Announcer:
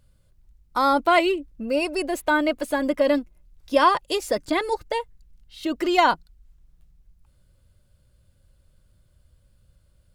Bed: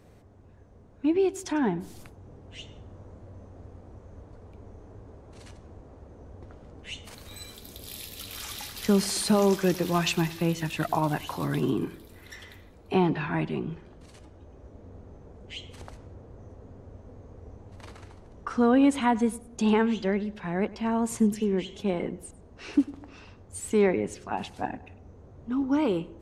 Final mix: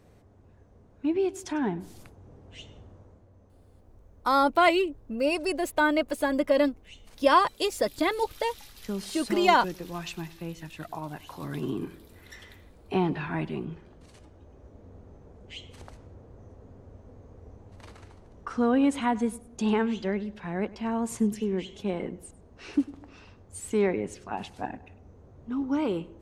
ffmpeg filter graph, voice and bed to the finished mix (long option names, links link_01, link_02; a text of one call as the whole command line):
ffmpeg -i stem1.wav -i stem2.wav -filter_complex "[0:a]adelay=3500,volume=-2.5dB[link_01];[1:a]volume=6dB,afade=type=out:start_time=2.8:duration=0.47:silence=0.375837,afade=type=in:start_time=11.14:duration=0.92:silence=0.375837[link_02];[link_01][link_02]amix=inputs=2:normalize=0" out.wav